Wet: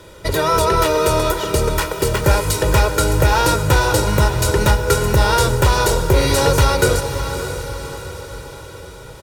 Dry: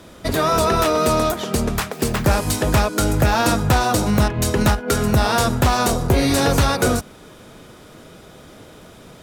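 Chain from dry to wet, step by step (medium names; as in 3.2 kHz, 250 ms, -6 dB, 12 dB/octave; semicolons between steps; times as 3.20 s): comb 2.1 ms, depth 76%; on a send: echo that smears into a reverb 592 ms, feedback 51%, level -9 dB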